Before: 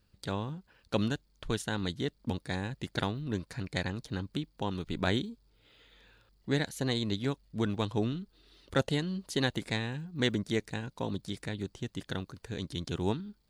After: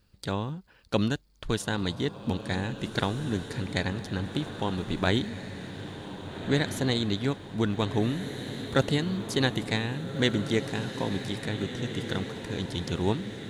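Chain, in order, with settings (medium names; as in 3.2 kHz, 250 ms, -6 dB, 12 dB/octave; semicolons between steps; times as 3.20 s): 8.19–9.38 s: crackle 140 per s -53 dBFS; echo that smears into a reverb 1637 ms, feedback 58%, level -9 dB; trim +4 dB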